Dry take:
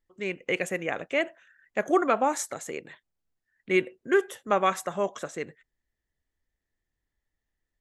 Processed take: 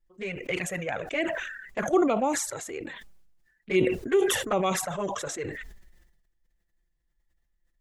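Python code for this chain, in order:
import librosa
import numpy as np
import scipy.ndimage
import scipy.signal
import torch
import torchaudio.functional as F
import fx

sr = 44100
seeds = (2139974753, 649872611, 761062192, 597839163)

y = fx.env_flanger(x, sr, rest_ms=5.8, full_db=-19.5)
y = fx.low_shelf(y, sr, hz=95.0, db=11.0)
y = fx.sustainer(y, sr, db_per_s=45.0)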